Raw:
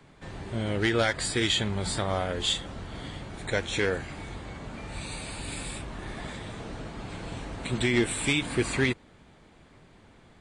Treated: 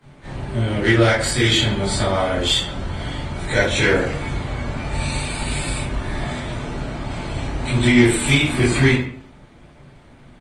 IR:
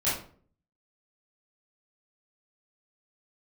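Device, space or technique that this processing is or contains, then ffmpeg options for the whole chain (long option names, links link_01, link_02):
speakerphone in a meeting room: -filter_complex "[1:a]atrim=start_sample=2205[link_01];[0:a][link_01]afir=irnorm=-1:irlink=0,asplit=2[link_02][link_03];[link_03]adelay=140,highpass=300,lowpass=3400,asoftclip=type=hard:threshold=-10dB,volume=-16dB[link_04];[link_02][link_04]amix=inputs=2:normalize=0,dynaudnorm=framelen=460:gausssize=11:maxgain=15dB,volume=-1dB" -ar 48000 -c:a libopus -b:a 24k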